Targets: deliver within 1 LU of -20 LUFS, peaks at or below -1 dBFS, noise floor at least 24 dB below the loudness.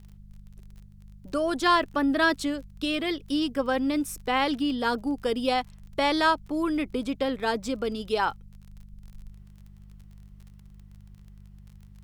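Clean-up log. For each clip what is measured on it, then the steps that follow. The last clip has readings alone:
tick rate 33 per s; hum 50 Hz; highest harmonic 200 Hz; hum level -46 dBFS; loudness -26.5 LUFS; peak level -11.0 dBFS; loudness target -20.0 LUFS
-> de-click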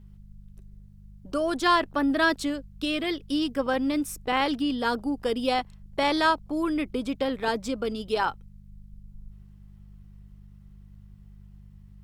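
tick rate 1.4 per s; hum 50 Hz; highest harmonic 200 Hz; hum level -47 dBFS
-> de-hum 50 Hz, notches 4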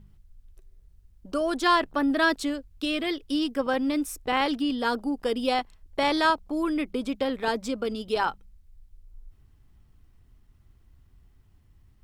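hum not found; loudness -27.0 LUFS; peak level -11.0 dBFS; loudness target -20.0 LUFS
-> trim +7 dB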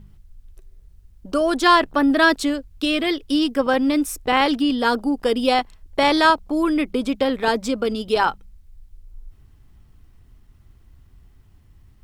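loudness -20.0 LUFS; peak level -4.0 dBFS; noise floor -53 dBFS

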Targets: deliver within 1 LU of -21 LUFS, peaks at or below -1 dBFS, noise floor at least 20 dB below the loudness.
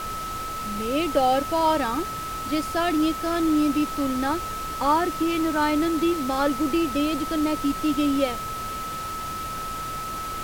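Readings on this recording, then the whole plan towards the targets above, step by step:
steady tone 1.3 kHz; tone level -30 dBFS; noise floor -32 dBFS; noise floor target -45 dBFS; loudness -24.5 LUFS; peak level -9.5 dBFS; loudness target -21.0 LUFS
-> band-stop 1.3 kHz, Q 30; noise print and reduce 13 dB; trim +3.5 dB

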